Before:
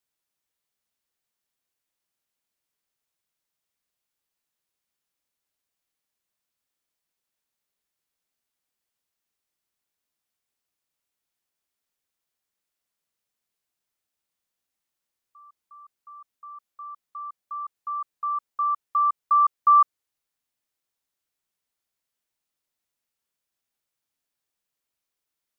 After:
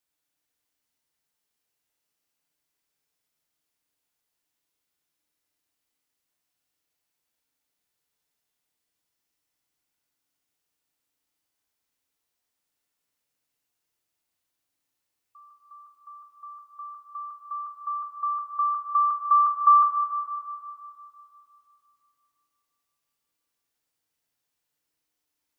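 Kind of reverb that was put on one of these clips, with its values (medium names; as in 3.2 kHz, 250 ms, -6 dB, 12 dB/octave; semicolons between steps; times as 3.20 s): FDN reverb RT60 2.8 s, low-frequency decay 1.25×, high-frequency decay 1×, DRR 0.5 dB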